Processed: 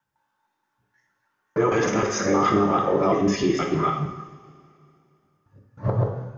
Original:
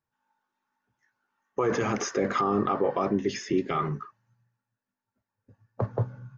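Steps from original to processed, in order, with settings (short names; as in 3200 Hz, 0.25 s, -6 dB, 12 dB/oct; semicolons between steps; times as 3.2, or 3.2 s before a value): local time reversal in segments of 0.156 s; two-slope reverb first 0.84 s, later 2.8 s, from -18 dB, DRR 0.5 dB; gain +3 dB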